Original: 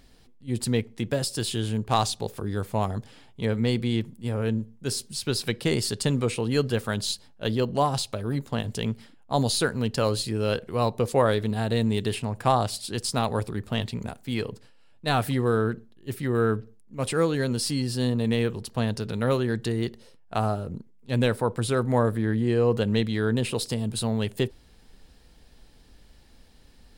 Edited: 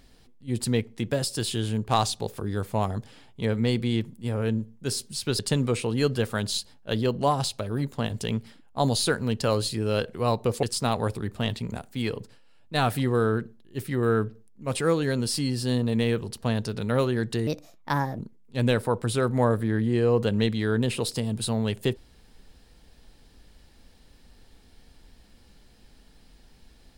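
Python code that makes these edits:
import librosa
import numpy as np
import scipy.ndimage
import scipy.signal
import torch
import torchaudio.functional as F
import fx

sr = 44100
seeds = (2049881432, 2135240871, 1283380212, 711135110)

y = fx.edit(x, sr, fx.cut(start_s=5.39, length_s=0.54),
    fx.cut(start_s=11.17, length_s=1.78),
    fx.speed_span(start_s=19.79, length_s=0.94, speed=1.31), tone=tone)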